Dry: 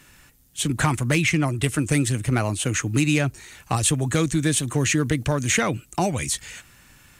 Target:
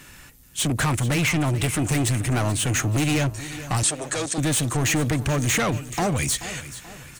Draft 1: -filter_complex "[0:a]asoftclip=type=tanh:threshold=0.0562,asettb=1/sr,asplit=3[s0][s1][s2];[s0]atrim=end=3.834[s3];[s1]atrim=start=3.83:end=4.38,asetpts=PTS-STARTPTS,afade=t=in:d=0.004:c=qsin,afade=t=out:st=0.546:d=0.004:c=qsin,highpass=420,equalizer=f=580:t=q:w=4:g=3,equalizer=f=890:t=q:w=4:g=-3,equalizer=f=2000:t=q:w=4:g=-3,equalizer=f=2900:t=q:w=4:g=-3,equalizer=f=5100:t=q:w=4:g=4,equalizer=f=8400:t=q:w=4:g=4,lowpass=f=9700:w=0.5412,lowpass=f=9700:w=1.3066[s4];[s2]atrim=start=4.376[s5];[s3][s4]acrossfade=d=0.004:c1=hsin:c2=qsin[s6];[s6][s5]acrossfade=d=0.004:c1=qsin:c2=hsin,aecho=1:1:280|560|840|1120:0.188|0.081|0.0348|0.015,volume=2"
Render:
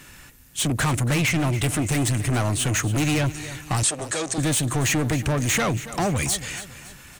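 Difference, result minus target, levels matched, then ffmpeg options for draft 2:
echo 152 ms early
-filter_complex "[0:a]asoftclip=type=tanh:threshold=0.0562,asettb=1/sr,asplit=3[s0][s1][s2];[s0]atrim=end=3.834[s3];[s1]atrim=start=3.83:end=4.38,asetpts=PTS-STARTPTS,afade=t=in:d=0.004:c=qsin,afade=t=out:st=0.546:d=0.004:c=qsin,highpass=420,equalizer=f=580:t=q:w=4:g=3,equalizer=f=890:t=q:w=4:g=-3,equalizer=f=2000:t=q:w=4:g=-3,equalizer=f=2900:t=q:w=4:g=-3,equalizer=f=5100:t=q:w=4:g=4,equalizer=f=8400:t=q:w=4:g=4,lowpass=f=9700:w=0.5412,lowpass=f=9700:w=1.3066[s4];[s2]atrim=start=4.376[s5];[s3][s4]acrossfade=d=0.004:c1=hsin:c2=qsin[s6];[s6][s5]acrossfade=d=0.004:c1=qsin:c2=hsin,aecho=1:1:432|864|1296|1728:0.188|0.081|0.0348|0.015,volume=2"

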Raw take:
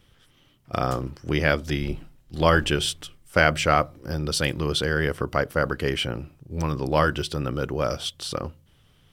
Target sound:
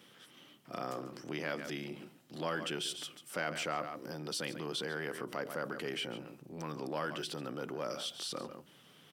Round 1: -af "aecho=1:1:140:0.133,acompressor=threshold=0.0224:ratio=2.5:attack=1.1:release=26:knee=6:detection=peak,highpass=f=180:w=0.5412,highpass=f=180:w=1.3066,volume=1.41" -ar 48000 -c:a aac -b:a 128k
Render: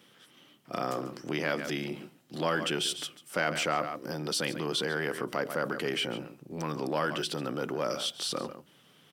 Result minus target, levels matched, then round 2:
compression: peak gain reduction -7 dB
-af "aecho=1:1:140:0.133,acompressor=threshold=0.00562:ratio=2.5:attack=1.1:release=26:knee=6:detection=peak,highpass=f=180:w=0.5412,highpass=f=180:w=1.3066,volume=1.41" -ar 48000 -c:a aac -b:a 128k

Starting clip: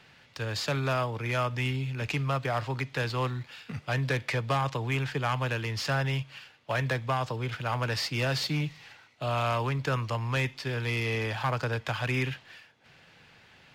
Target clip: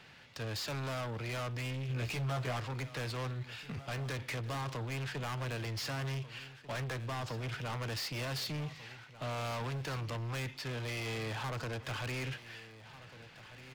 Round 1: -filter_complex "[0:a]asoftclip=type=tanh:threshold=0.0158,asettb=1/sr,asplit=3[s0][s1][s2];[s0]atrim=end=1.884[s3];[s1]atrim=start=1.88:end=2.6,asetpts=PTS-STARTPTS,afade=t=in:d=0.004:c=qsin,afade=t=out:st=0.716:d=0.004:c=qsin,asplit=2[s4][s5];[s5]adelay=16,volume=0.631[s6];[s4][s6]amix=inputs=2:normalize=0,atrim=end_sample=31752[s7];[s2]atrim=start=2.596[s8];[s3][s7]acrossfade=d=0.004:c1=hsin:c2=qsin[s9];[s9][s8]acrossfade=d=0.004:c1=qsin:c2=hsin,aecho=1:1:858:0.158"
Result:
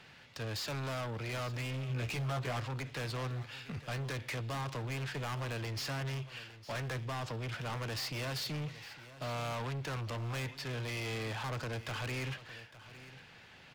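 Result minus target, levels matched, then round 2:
echo 634 ms early
-filter_complex "[0:a]asoftclip=type=tanh:threshold=0.0158,asettb=1/sr,asplit=3[s0][s1][s2];[s0]atrim=end=1.884[s3];[s1]atrim=start=1.88:end=2.6,asetpts=PTS-STARTPTS,afade=t=in:d=0.004:c=qsin,afade=t=out:st=0.716:d=0.004:c=qsin,asplit=2[s4][s5];[s5]adelay=16,volume=0.631[s6];[s4][s6]amix=inputs=2:normalize=0,atrim=end_sample=31752[s7];[s2]atrim=start=2.596[s8];[s3][s7]acrossfade=d=0.004:c1=hsin:c2=qsin[s9];[s9][s8]acrossfade=d=0.004:c1=qsin:c2=hsin,aecho=1:1:1492:0.158"

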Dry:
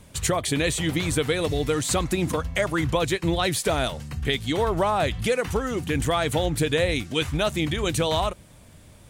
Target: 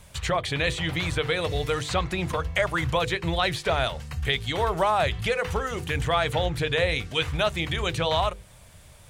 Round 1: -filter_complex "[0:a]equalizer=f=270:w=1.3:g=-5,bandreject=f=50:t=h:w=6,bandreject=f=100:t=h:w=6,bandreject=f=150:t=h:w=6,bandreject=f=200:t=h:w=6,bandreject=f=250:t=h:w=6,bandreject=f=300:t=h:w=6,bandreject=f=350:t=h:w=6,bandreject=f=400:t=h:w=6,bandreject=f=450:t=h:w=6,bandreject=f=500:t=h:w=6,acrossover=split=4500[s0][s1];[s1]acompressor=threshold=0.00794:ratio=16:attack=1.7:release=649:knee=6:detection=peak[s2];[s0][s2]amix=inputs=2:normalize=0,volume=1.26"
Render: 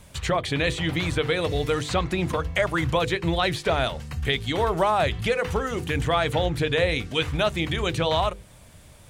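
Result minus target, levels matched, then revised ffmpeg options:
250 Hz band +3.5 dB
-filter_complex "[0:a]equalizer=f=270:w=1.3:g=-12.5,bandreject=f=50:t=h:w=6,bandreject=f=100:t=h:w=6,bandreject=f=150:t=h:w=6,bandreject=f=200:t=h:w=6,bandreject=f=250:t=h:w=6,bandreject=f=300:t=h:w=6,bandreject=f=350:t=h:w=6,bandreject=f=400:t=h:w=6,bandreject=f=450:t=h:w=6,bandreject=f=500:t=h:w=6,acrossover=split=4500[s0][s1];[s1]acompressor=threshold=0.00794:ratio=16:attack=1.7:release=649:knee=6:detection=peak[s2];[s0][s2]amix=inputs=2:normalize=0,volume=1.26"

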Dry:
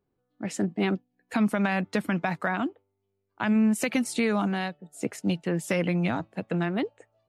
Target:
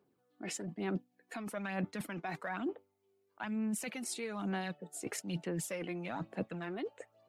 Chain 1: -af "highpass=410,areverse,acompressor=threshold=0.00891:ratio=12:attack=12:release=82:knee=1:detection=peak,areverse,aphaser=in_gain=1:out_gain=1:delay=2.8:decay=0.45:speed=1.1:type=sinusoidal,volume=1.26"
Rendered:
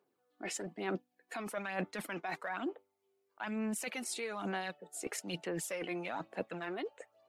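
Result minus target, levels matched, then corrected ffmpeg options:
250 Hz band -2.5 dB
-af "highpass=190,areverse,acompressor=threshold=0.00891:ratio=12:attack=12:release=82:knee=1:detection=peak,areverse,aphaser=in_gain=1:out_gain=1:delay=2.8:decay=0.45:speed=1.1:type=sinusoidal,volume=1.26"

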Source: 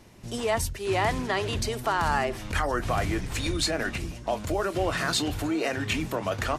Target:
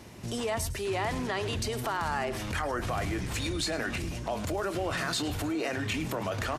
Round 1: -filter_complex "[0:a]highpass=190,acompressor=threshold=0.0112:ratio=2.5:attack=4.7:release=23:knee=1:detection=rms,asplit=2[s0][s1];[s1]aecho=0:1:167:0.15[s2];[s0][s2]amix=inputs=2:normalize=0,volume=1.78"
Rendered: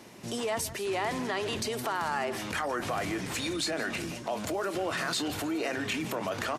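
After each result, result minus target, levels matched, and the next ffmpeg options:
echo 61 ms late; 125 Hz band -7.0 dB
-filter_complex "[0:a]highpass=190,acompressor=threshold=0.0112:ratio=2.5:attack=4.7:release=23:knee=1:detection=rms,asplit=2[s0][s1];[s1]aecho=0:1:106:0.15[s2];[s0][s2]amix=inputs=2:normalize=0,volume=1.78"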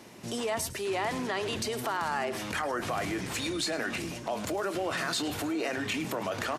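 125 Hz band -7.0 dB
-filter_complex "[0:a]highpass=51,acompressor=threshold=0.0112:ratio=2.5:attack=4.7:release=23:knee=1:detection=rms,asplit=2[s0][s1];[s1]aecho=0:1:106:0.15[s2];[s0][s2]amix=inputs=2:normalize=0,volume=1.78"

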